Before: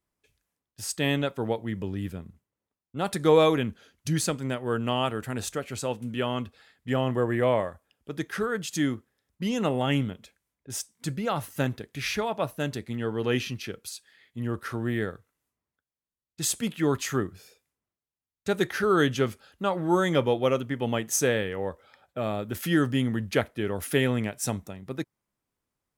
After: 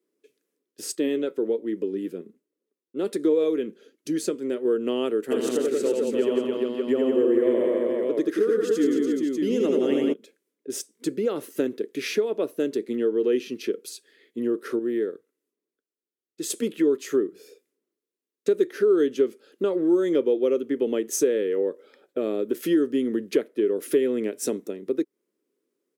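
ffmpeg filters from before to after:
-filter_complex "[0:a]asettb=1/sr,asplit=3[a][b][c];[a]atrim=end=0.954[d];[b]atrim=start=0.95:end=4.65,asetpts=PTS-STARTPTS,afade=t=in:d=0.004:c=qsin,afade=t=out:st=3.696:d=0.004:c=qsin,flanger=delay=3.1:depth=3:regen=69:speed=1.3:shape=sinusoidal[e];[c]atrim=start=4.646[f];[d][e]acrossfade=d=0.004:c1=hsin:c2=qsin[g];[g][f]acrossfade=d=0.004:c1=qsin:c2=hsin,asplit=3[h][i][j];[h]afade=t=out:st=5.3:d=0.02[k];[i]aecho=1:1:80|176|291.2|429.4|595.3:0.794|0.631|0.501|0.398|0.316,afade=t=in:st=5.3:d=0.02,afade=t=out:st=10.12:d=0.02[l];[j]afade=t=in:st=10.12:d=0.02[m];[k][l][m]amix=inputs=3:normalize=0,asplit=3[n][o][p];[n]atrim=end=14.792[q];[o]atrim=start=14.788:end=16.502,asetpts=PTS-STARTPTS,volume=-6dB[r];[p]atrim=start=16.498[s];[q][r]acrossfade=d=0.004:c1=hsin:c2=hsin[t];[t][s]acrossfade=d=0.004:c1=hsin:c2=hsin,highpass=f=280:w=0.5412,highpass=f=280:w=1.3066,lowshelf=f=570:t=q:w=3:g=10.5,acompressor=threshold=-23dB:ratio=2.5"

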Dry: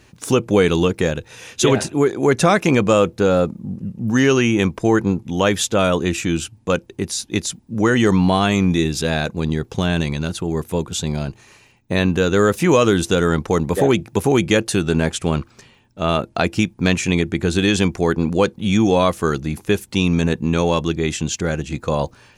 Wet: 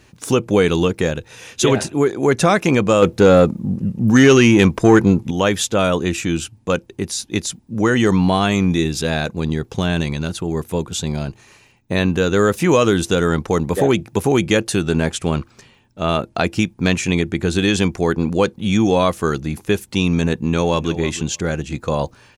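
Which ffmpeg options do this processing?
-filter_complex "[0:a]asettb=1/sr,asplit=3[a][b][c];[a]atrim=end=3.024[d];[b]atrim=start=3.02:end=5.31,asetpts=PTS-STARTPTS,afade=t=in:d=0.004:c=qsin,afade=t=out:st=2.286:d=0.004:c=qsin,acontrast=67[e];[c]atrim=start=5.306[f];[d][e]acrossfade=d=0.004:c1=hsin:c2=qsin[g];[g][f]acrossfade=d=0.004:c1=qsin:c2=hsin,asplit=2[h][i];[i]afade=t=in:st=20.34:d=0.01,afade=t=out:st=20.91:d=0.01,aecho=0:1:310|620:0.199526|0.0199526[j];[h][j]amix=inputs=2:normalize=0"

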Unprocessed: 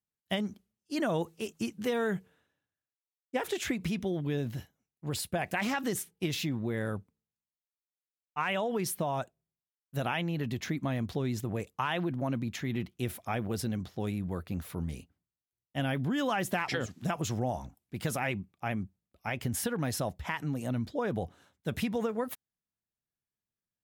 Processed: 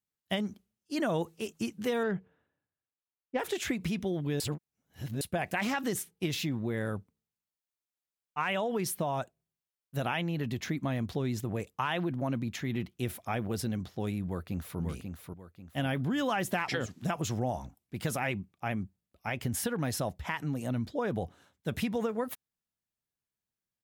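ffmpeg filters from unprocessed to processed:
-filter_complex "[0:a]asettb=1/sr,asplit=3[a][b][c];[a]atrim=end=2.034[d];[b]atrim=start=2.03:end=3.39,asetpts=PTS-STARTPTS,afade=t=in:d=0.004:c=qsin,afade=t=out:st=1.356:d=0.004:c=qsin,adynamicsmooth=sensitivity=1.5:basefreq=2.3k[e];[c]atrim=start=3.386[f];[d][e]acrossfade=d=0.004:c1=hsin:c2=qsin[g];[g][f]acrossfade=d=0.004:c1=qsin:c2=hsin,asplit=2[h][i];[i]afade=t=in:st=14.25:d=0.01,afade=t=out:st=14.79:d=0.01,aecho=0:1:540|1080|1620|2160:0.530884|0.18581|0.0650333|0.0227617[j];[h][j]amix=inputs=2:normalize=0,asplit=3[k][l][m];[k]atrim=end=4.402[n];[l]atrim=start=4.398:end=5.212,asetpts=PTS-STARTPTS,areverse[o];[m]atrim=start=5.208[p];[n][o]acrossfade=d=0.004:c1=hsin:c2=hsin[q];[q][p]acrossfade=d=0.004:c1=hsin:c2=hsin"

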